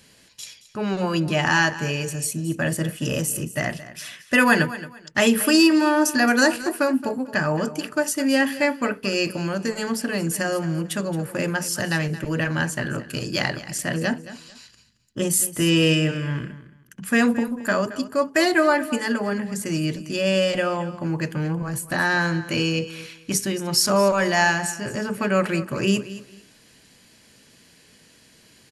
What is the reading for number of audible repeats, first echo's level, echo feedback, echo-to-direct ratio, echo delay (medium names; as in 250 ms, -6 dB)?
2, -15.5 dB, 24%, -15.5 dB, 222 ms